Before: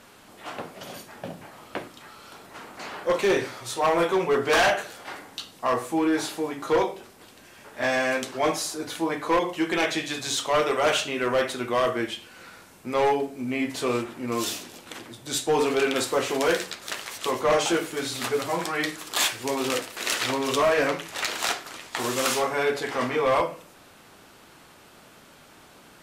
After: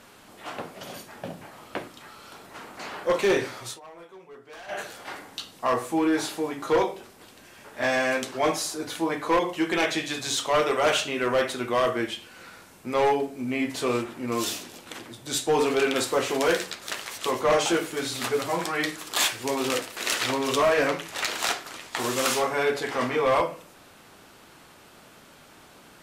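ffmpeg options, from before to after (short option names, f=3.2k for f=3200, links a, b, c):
-filter_complex "[0:a]asplit=3[a][b][c];[a]atrim=end=3.8,asetpts=PTS-STARTPTS,afade=t=out:st=3.66:d=0.14:silence=0.0630957[d];[b]atrim=start=3.8:end=4.68,asetpts=PTS-STARTPTS,volume=-24dB[e];[c]atrim=start=4.68,asetpts=PTS-STARTPTS,afade=t=in:d=0.14:silence=0.0630957[f];[d][e][f]concat=n=3:v=0:a=1"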